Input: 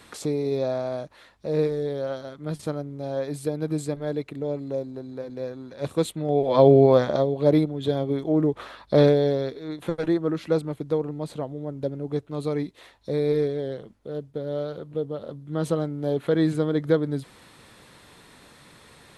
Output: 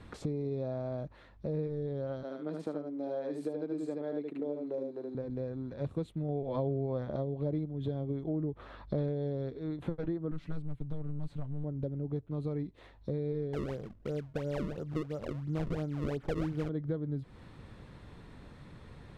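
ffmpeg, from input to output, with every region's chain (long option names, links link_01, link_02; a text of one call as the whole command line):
ffmpeg -i in.wav -filter_complex "[0:a]asettb=1/sr,asplit=3[link_01][link_02][link_03];[link_01]atrim=end=2.234[link_04];[link_02]atrim=start=2.23:end=5.15,asetpts=PTS-STARTPTS,afade=type=in:duration=0.004:curve=qsin,afade=type=out:start_time=2.916:duration=0.004:curve=qsin,highpass=frequency=250:width=0.5412,highpass=frequency=250:width=1.3066,aecho=1:1:75:0.668,atrim=end_sample=128772[link_05];[link_03]atrim=start=5.146[link_06];[link_04][link_05]acrossfade=duration=0.004:curve1=hsin:curve2=qsin[link_07];[link_07][link_06]acrossfade=duration=0.004:curve1=qsin:curve2=hsin,asettb=1/sr,asplit=3[link_08][link_09][link_10];[link_08]atrim=end=10.314[link_11];[link_09]atrim=start=10.31:end=11.64,asetpts=PTS-STARTPTS,afade=type=in:duration=0.004:curve=qsin,afade=type=out:start_time=1.326:duration=0.004:curve=qsin,equalizer=frequency=460:width_type=o:width=1.7:gain=-11.5,aecho=1:1:7:0.94,atrim=end_sample=58653,aeval=exprs='clip(val(0),-1,0.0106)':channel_layout=same[link_12];[link_10]atrim=start=11.636[link_13];[link_11][link_12]acrossfade=duration=0.004:curve1=hsin:curve2=qsin[link_14];[link_14][link_13]acrossfade=duration=0.004:curve1=qsin:curve2=hsin,asettb=1/sr,asplit=3[link_15][link_16][link_17];[link_15]atrim=end=13.534[link_18];[link_16]atrim=start=13.53:end=16.69,asetpts=PTS-STARTPTS,afade=type=in:duration=0.004:curve=qsin,afade=type=out:start_time=3.156:duration=0.004:curve=qsin,lowshelf=frequency=340:gain=-6,acrusher=samples=32:mix=1:aa=0.000001:lfo=1:lforange=51.2:lforate=2.9,acontrast=57[link_19];[link_17]atrim=start=16.686[link_20];[link_18][link_19]acrossfade=duration=0.004:curve1=hsin:curve2=qsin[link_21];[link_21][link_20]acrossfade=duration=0.004:curve1=qsin:curve2=hsin,aemphasis=mode=reproduction:type=riaa,acompressor=threshold=-28dB:ratio=4,volume=-5.5dB" out.wav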